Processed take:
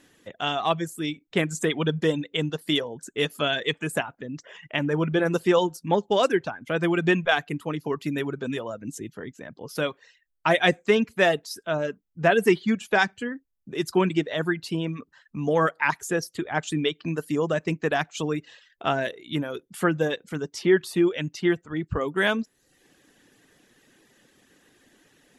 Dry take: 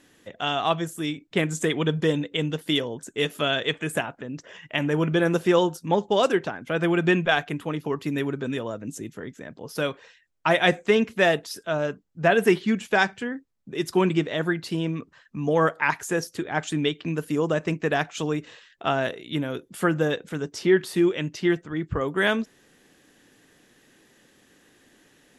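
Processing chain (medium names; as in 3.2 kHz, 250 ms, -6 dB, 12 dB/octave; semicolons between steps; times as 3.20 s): reverb removal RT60 0.63 s; 4.67–5.25 s: treble shelf 8.5 kHz -> 5.5 kHz -11.5 dB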